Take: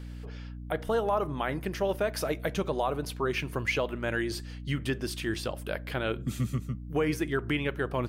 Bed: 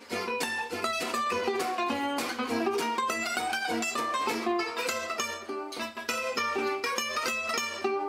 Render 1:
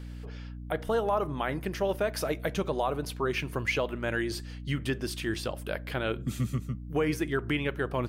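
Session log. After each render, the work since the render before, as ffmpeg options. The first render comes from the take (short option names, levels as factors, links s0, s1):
-af anull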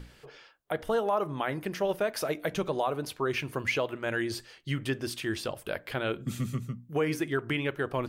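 -af "bandreject=f=60:t=h:w=6,bandreject=f=120:t=h:w=6,bandreject=f=180:t=h:w=6,bandreject=f=240:t=h:w=6,bandreject=f=300:t=h:w=6"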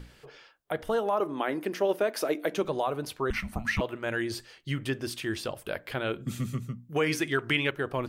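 -filter_complex "[0:a]asettb=1/sr,asplit=3[s0][s1][s2];[s0]atrim=end=1.204[s3];[s1]atrim=start=1.2:end=2.65,asetpts=PTS-STARTPTS,afade=t=in:d=0.004:c=qsin,afade=t=out:st=1.446:d=0.004:c=qsin,highpass=f=290:t=q:w=1.8[s4];[s2]atrim=start=2.646[s5];[s3][s4]acrossfade=d=0.004:c1=hsin:c2=qsin[s6];[s6][s5]acrossfade=d=0.004:c1=qsin:c2=hsin,asettb=1/sr,asplit=3[s7][s8][s9];[s7]atrim=end=3.304[s10];[s8]atrim=start=3.3:end=3.81,asetpts=PTS-STARTPTS,afade=t=in:d=0.004:c=qsin,afade=t=out:st=0.506:d=0.004:c=qsin,afreqshift=-340[s11];[s9]atrim=start=3.806[s12];[s10][s11]acrossfade=d=0.004:c1=hsin:c2=qsin[s13];[s13][s12]acrossfade=d=0.004:c1=qsin:c2=hsin,asettb=1/sr,asplit=3[s14][s15][s16];[s14]atrim=end=6.964[s17];[s15]atrim=start=6.96:end=7.71,asetpts=PTS-STARTPTS,afade=t=in:d=0.004:c=qsin,afade=t=out:st=0.746:d=0.004:c=qsin,equalizer=f=4200:w=0.36:g=8[s18];[s16]atrim=start=7.706[s19];[s17][s18]acrossfade=d=0.004:c1=hsin:c2=qsin[s20];[s20][s19]acrossfade=d=0.004:c1=qsin:c2=hsin"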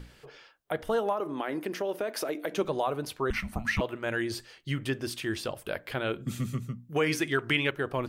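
-filter_complex "[0:a]asettb=1/sr,asplit=3[s0][s1][s2];[s0]atrim=end=1.124[s3];[s1]atrim=start=1.12:end=2.58,asetpts=PTS-STARTPTS,afade=t=in:d=0.004:c=qsin,afade=t=out:st=1.456:d=0.004:c=qsin,acompressor=threshold=0.0447:ratio=4:attack=3.2:release=140:knee=1:detection=peak[s4];[s2]atrim=start=2.576[s5];[s3][s4]acrossfade=d=0.004:c1=hsin:c2=qsin[s6];[s6][s5]acrossfade=d=0.004:c1=qsin:c2=hsin"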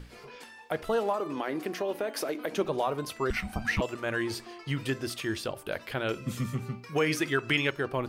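-filter_complex "[1:a]volume=0.126[s0];[0:a][s0]amix=inputs=2:normalize=0"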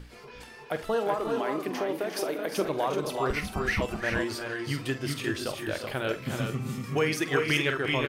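-filter_complex "[0:a]asplit=2[s0][s1];[s1]adelay=47,volume=0.251[s2];[s0][s2]amix=inputs=2:normalize=0,aecho=1:1:322|353|381:0.119|0.355|0.562"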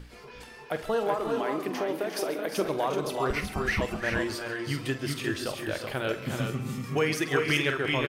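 -af "aecho=1:1:135:0.158"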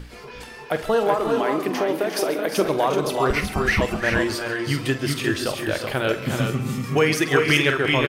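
-af "volume=2.37"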